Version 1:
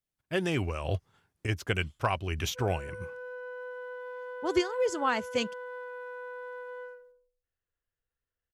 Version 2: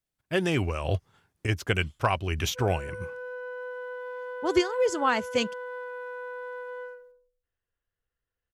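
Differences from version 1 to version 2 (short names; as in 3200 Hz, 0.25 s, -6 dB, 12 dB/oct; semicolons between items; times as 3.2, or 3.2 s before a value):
speech +3.5 dB; background +3.5 dB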